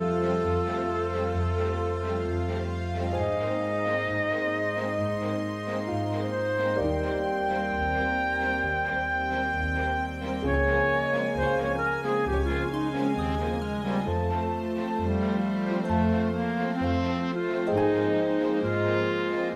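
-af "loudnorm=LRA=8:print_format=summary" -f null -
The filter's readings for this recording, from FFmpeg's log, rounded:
Input Integrated:    -27.0 LUFS
Input True Peak:     -12.6 dBTP
Input LRA:             2.0 LU
Input Threshold:     -37.0 LUFS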